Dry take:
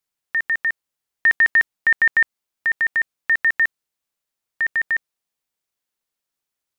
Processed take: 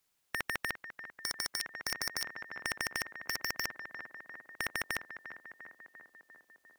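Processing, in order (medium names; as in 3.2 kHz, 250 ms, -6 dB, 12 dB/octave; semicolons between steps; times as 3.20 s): tape echo 348 ms, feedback 77%, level -14.5 dB, low-pass 1.5 kHz; wavefolder -16.5 dBFS; spectrum-flattening compressor 2:1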